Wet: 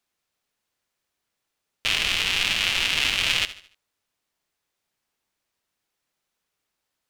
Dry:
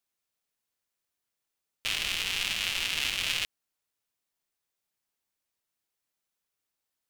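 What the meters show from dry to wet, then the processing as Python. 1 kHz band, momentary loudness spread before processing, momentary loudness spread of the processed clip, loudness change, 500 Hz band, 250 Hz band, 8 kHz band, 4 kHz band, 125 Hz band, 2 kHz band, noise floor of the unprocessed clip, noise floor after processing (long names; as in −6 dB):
+8.5 dB, 5 LU, 5 LU, +7.0 dB, +8.5 dB, +8.5 dB, +4.0 dB, +7.0 dB, +8.5 dB, +8.0 dB, below −85 dBFS, −82 dBFS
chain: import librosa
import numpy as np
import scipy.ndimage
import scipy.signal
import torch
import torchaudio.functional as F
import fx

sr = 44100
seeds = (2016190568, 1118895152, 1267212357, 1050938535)

y = fx.high_shelf(x, sr, hz=7500.0, db=-9.5)
y = fx.echo_feedback(y, sr, ms=74, feedback_pct=40, wet_db=-15)
y = y * 10.0 ** (8.5 / 20.0)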